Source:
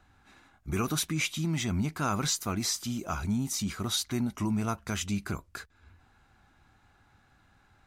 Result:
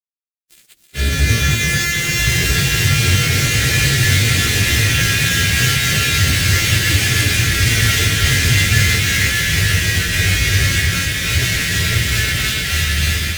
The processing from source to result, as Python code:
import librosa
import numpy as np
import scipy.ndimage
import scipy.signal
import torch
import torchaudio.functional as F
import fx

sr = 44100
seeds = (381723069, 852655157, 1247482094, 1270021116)

y = np.r_[np.sort(x[:len(x) // 128 * 128].reshape(-1, 128), axis=1).ravel(), x[len(x) // 128 * 128:]]
y = fx.recorder_agc(y, sr, target_db=-24.5, rise_db_per_s=9.2, max_gain_db=30)
y = fx.echo_pitch(y, sr, ms=470, semitones=-4, count=3, db_per_echo=-3.0)
y = scipy.signal.sosfilt(scipy.signal.butter(2, 63.0, 'highpass', fs=sr, output='sos'), y)
y = fx.peak_eq(y, sr, hz=2100.0, db=9.0, octaves=1.8)
y = fx.granulator(y, sr, seeds[0], grain_ms=205.0, per_s=13.0, spray_ms=100.0, spread_st=0)
y = scipy.signal.sosfilt(scipy.signal.ellip(3, 1.0, 60, [130.0, 1600.0], 'bandstop', fs=sr, output='sos'), y)
y = fx.fuzz(y, sr, gain_db=42.0, gate_db=-46.0)
y = fx.stretch_vocoder_free(y, sr, factor=1.7)
y = fx.peak_eq(y, sr, hz=960.0, db=-14.0, octaves=1.4)
y = fx.echo_split(y, sr, split_hz=300.0, low_ms=222, high_ms=316, feedback_pct=52, wet_db=-5)
y = y * librosa.db_to_amplitude(5.0)